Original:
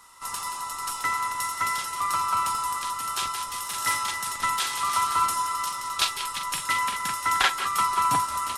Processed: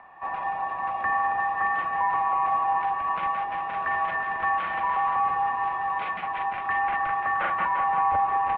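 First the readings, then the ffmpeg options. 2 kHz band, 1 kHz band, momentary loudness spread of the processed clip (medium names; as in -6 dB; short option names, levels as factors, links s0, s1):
+1.5 dB, +2.5 dB, 5 LU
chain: -af "alimiter=limit=0.0891:level=0:latency=1:release=21,acompressor=mode=upward:threshold=0.00224:ratio=2.5,afreqshift=-22,aecho=1:1:343:0.316,highpass=f=230:t=q:w=0.5412,highpass=f=230:t=q:w=1.307,lowpass=f=2400:t=q:w=0.5176,lowpass=f=2400:t=q:w=0.7071,lowpass=f=2400:t=q:w=1.932,afreqshift=-180,volume=1.78"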